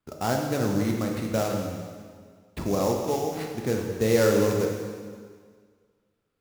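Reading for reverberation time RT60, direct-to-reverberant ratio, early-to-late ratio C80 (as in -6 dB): 1.8 s, 0.5 dB, 4.5 dB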